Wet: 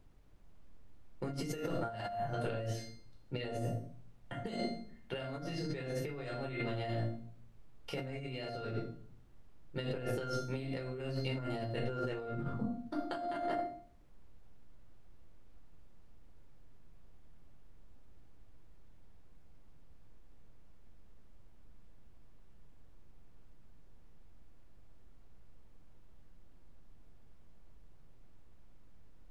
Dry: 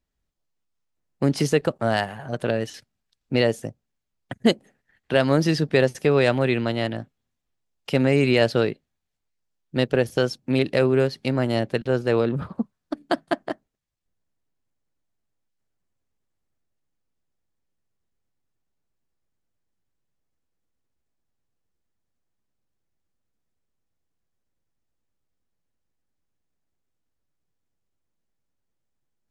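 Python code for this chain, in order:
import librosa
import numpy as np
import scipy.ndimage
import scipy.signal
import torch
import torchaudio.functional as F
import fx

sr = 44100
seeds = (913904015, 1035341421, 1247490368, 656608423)

y = fx.wow_flutter(x, sr, seeds[0], rate_hz=2.1, depth_cents=27.0)
y = fx.comb_fb(y, sr, f0_hz=700.0, decay_s=0.48, harmonics='all', damping=0.0, mix_pct=90)
y = fx.room_shoebox(y, sr, seeds[1], volume_m3=550.0, walls='furnished', distance_m=4.4)
y = fx.over_compress(y, sr, threshold_db=-37.0, ratio=-1.0)
y = fx.dmg_noise_colour(y, sr, seeds[2], colour='brown', level_db=-60.0)
y = y * librosa.db_to_amplitude(-1.0)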